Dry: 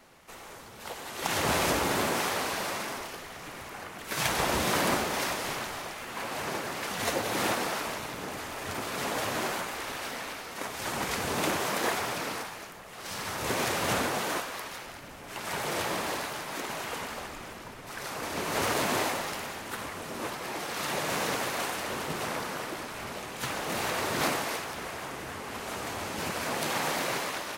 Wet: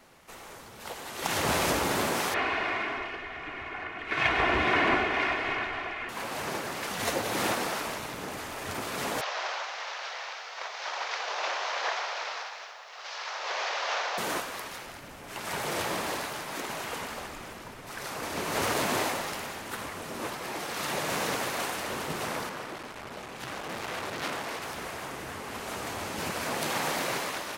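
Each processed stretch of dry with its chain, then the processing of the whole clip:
0:02.34–0:06.09: low-pass with resonance 2,300 Hz, resonance Q 2.1 + comb filter 2.8 ms, depth 56%
0:09.21–0:14.18: variable-slope delta modulation 32 kbit/s + inverse Chebyshev high-pass filter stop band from 220 Hz, stop band 50 dB + feedback echo at a low word length 296 ms, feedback 35%, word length 10 bits, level −13.5 dB
0:22.49–0:24.62: high-shelf EQ 6,600 Hz −8 dB + saturating transformer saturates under 2,700 Hz
whole clip: no processing

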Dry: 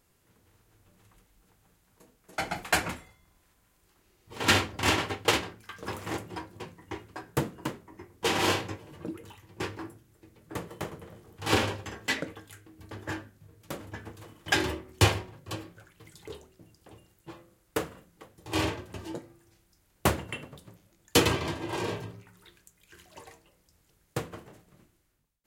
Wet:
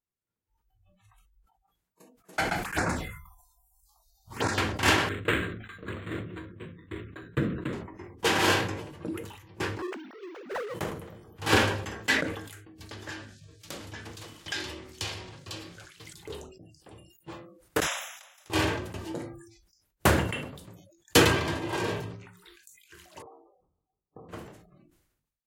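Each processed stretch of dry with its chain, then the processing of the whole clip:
0:02.65–0:04.58: compressor whose output falls as the input rises −28 dBFS, ratio −0.5 + phaser swept by the level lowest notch 300 Hz, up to 3,100 Hz, full sweep at −26.5 dBFS
0:05.09–0:07.73: phaser with its sweep stopped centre 2,000 Hz, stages 4 + linearly interpolated sample-rate reduction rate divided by 8×
0:09.82–0:10.74: three sine waves on the formant tracks + high-pass filter 440 Hz 6 dB per octave + power curve on the samples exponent 0.5
0:12.78–0:16.13: parametric band 4,700 Hz +12.5 dB 2 octaves + downward compressor 3 to 1, threshold −40 dBFS
0:17.80–0:18.50: moving average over 10 samples + downward compressor 4 to 1, threshold −52 dBFS + every bin compressed towards the loudest bin 10 to 1
0:23.22–0:24.29: Chebyshev low-pass filter 1,300 Hz, order 8 + hollow resonant body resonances 420/760 Hz, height 7 dB, ringing for 35 ms + downward compressor, threshold −48 dBFS
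whole clip: noise reduction from a noise print of the clip's start 29 dB; dynamic equaliser 1,600 Hz, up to +6 dB, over −47 dBFS, Q 4.5; level that may fall only so fast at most 63 dB per second; level +1.5 dB

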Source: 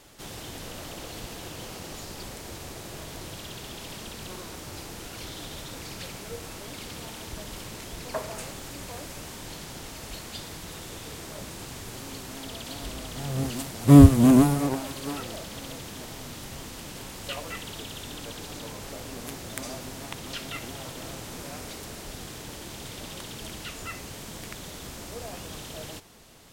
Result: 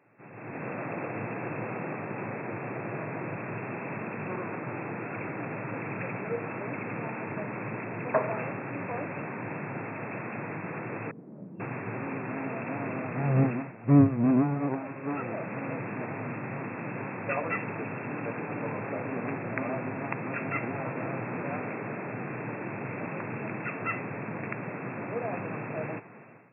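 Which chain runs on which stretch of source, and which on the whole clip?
0:11.11–0:11.60: four-pole ladder band-pass 230 Hz, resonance 45% + double-tracking delay 41 ms −2 dB
whole clip: brick-wall band-pass 100–2,700 Hz; automatic gain control gain up to 15.5 dB; level −8.5 dB

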